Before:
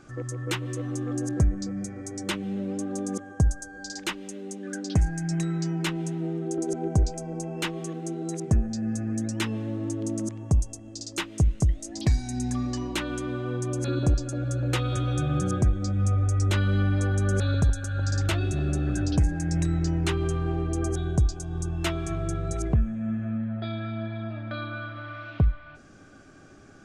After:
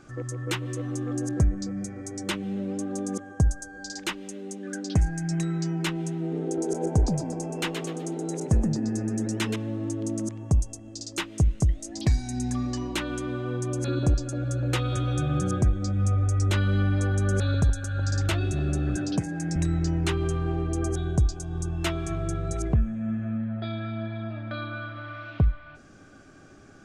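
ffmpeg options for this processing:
-filter_complex "[0:a]asettb=1/sr,asplit=3[s0][s1][s2];[s0]atrim=end=6.194[s3];[s1]atrim=start=6.19:end=9.56,asetpts=PTS-STARTPTS,afade=t=in:d=0.004:c=qsin,afade=t=out:st=3.366:d=0.004:c=qsin,asplit=5[s4][s5][s6][s7][s8];[s5]adelay=124,afreqshift=100,volume=0.447[s9];[s6]adelay=248,afreqshift=200,volume=0.157[s10];[s7]adelay=372,afreqshift=300,volume=0.055[s11];[s8]adelay=496,afreqshift=400,volume=0.0191[s12];[s4][s9][s10][s11][s12]amix=inputs=5:normalize=0,atrim=end_sample=148617[s13];[s2]atrim=start=9.556[s14];[s3][s13]acrossfade=d=0.004:c1=hsin:c2=qsin[s15];[s15][s14]acrossfade=d=0.004:c1=qsin:c2=hsin,asettb=1/sr,asplit=3[s16][s17][s18];[s16]atrim=end=18.964[s19];[s17]atrim=start=18.96:end=19.56,asetpts=PTS-STARTPTS,afade=t=in:d=0.004:c=qsin,afade=t=out:st=0.596:d=0.004:c=qsin,highpass=f=130:w=0.5412,highpass=f=130:w=1.3066[s20];[s18]atrim=start=19.556[s21];[s19][s20]acrossfade=d=0.004:c1=hsin:c2=qsin[s22];[s22][s21]acrossfade=d=0.004:c1=qsin:c2=hsin"

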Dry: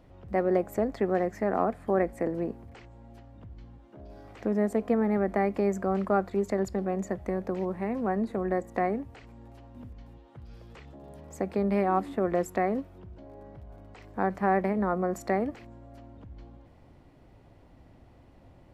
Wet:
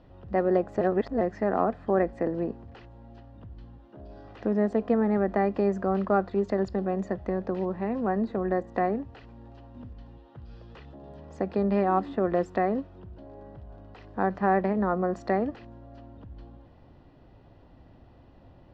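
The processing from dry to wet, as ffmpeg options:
-filter_complex "[0:a]asplit=3[s0][s1][s2];[s0]atrim=end=0.812[s3];[s1]atrim=start=0.808:end=1.212,asetpts=PTS-STARTPTS,areverse[s4];[s2]atrim=start=1.208[s5];[s3][s4]acrossfade=d=0.004:c1=hsin:c2=hsin[s6];[s6][s5]acrossfade=d=0.004:c1=hsin:c2=hsin,lowpass=f=4900:w=0.5412,lowpass=f=4900:w=1.3066,bandreject=f=2200:w=6,volume=1.19"

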